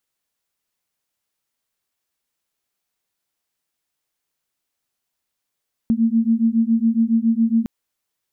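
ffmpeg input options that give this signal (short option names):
-f lavfi -i "aevalsrc='0.133*(sin(2*PI*224*t)+sin(2*PI*231.2*t))':d=1.76:s=44100"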